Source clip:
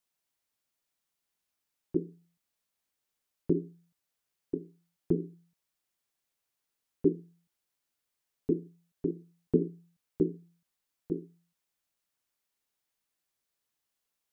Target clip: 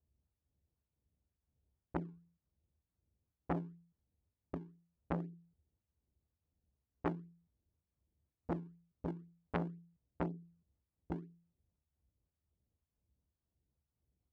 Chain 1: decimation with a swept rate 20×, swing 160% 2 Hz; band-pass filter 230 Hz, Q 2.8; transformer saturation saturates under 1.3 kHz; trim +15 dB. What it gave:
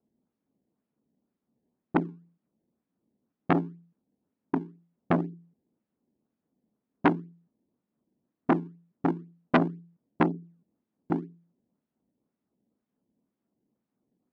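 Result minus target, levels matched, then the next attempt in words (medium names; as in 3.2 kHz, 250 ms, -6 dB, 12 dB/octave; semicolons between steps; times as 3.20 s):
125 Hz band -4.5 dB
decimation with a swept rate 20×, swing 160% 2 Hz; band-pass filter 71 Hz, Q 2.8; transformer saturation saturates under 1.3 kHz; trim +15 dB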